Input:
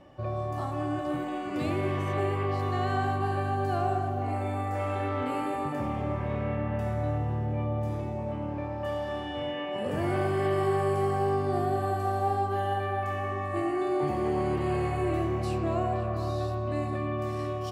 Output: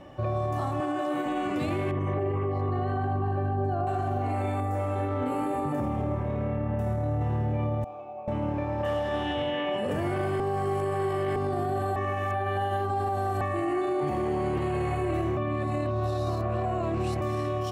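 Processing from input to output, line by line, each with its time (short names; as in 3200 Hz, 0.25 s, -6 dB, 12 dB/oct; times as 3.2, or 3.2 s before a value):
0.8–1.26 HPF 280 Hz
1.91–3.87 formant sharpening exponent 1.5
4.6–7.21 bell 2800 Hz -8.5 dB 2.7 oct
7.84–8.28 vowel filter a
8.78–9.78 Doppler distortion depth 0.1 ms
10.4–11.36 reverse
11.96–13.41 reverse
15.37–17.21 reverse
whole clip: notch 4700 Hz, Q 12; limiter -27.5 dBFS; gain +6.5 dB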